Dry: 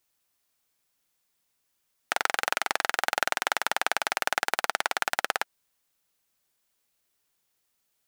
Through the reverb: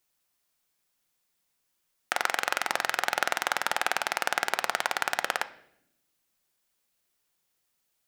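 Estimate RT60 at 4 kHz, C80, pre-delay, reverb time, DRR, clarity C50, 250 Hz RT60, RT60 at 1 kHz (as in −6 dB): 0.65 s, 19.5 dB, 5 ms, 0.80 s, 11.0 dB, 16.5 dB, 1.4 s, 0.65 s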